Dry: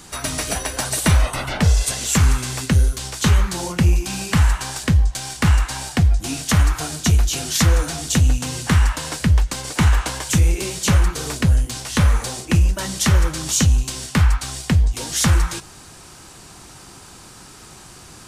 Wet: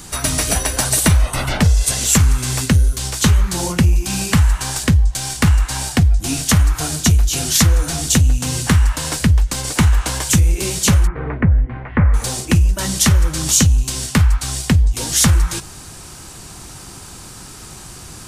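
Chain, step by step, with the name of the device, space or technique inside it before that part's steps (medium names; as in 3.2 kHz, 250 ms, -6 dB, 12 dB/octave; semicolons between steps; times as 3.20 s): 11.07–12.14 s: elliptic low-pass 2.1 kHz, stop band 70 dB; ASMR close-microphone chain (bass shelf 170 Hz +7 dB; compression 5:1, threshold -13 dBFS, peak gain reduction 8 dB; treble shelf 6.6 kHz +6.5 dB); trim +3 dB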